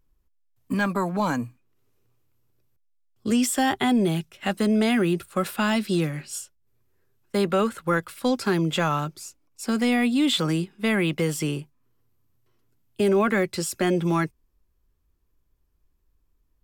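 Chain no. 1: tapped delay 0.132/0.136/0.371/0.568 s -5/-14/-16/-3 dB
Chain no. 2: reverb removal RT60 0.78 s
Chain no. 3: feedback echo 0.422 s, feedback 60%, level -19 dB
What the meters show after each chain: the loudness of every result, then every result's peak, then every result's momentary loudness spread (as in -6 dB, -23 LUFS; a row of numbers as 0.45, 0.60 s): -22.5, -25.5, -24.5 LUFS; -8.5, -12.0, -11.5 dBFS; 11, 10, 17 LU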